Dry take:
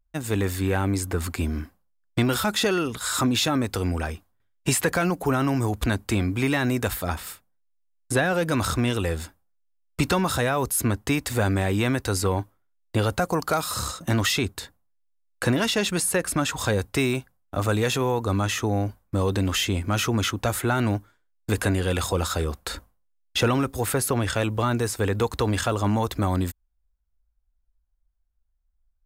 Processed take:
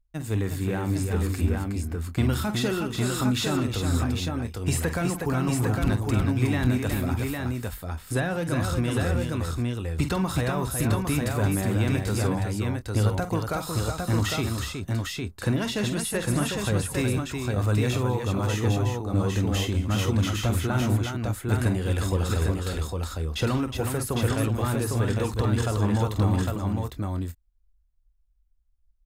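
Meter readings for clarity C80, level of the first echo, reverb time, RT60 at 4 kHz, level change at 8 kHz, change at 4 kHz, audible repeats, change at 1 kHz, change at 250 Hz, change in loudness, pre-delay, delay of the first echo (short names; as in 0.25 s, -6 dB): none, -9.0 dB, none, none, -4.5 dB, -4.5 dB, 4, -4.0 dB, -0.5 dB, -1.5 dB, none, 47 ms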